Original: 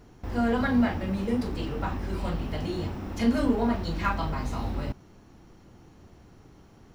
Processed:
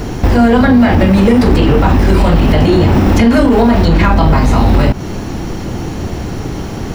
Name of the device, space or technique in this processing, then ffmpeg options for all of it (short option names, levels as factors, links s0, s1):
mastering chain: -filter_complex "[0:a]equalizer=f=1200:t=o:w=0.76:g=-3,acrossover=split=810|2500[s0][s1][s2];[s0]acompressor=threshold=0.0355:ratio=4[s3];[s1]acompressor=threshold=0.00794:ratio=4[s4];[s2]acompressor=threshold=0.00178:ratio=4[s5];[s3][s4][s5]amix=inputs=3:normalize=0,acompressor=threshold=0.0141:ratio=2,asoftclip=type=tanh:threshold=0.0376,alimiter=level_in=47.3:limit=0.891:release=50:level=0:latency=1,volume=0.891"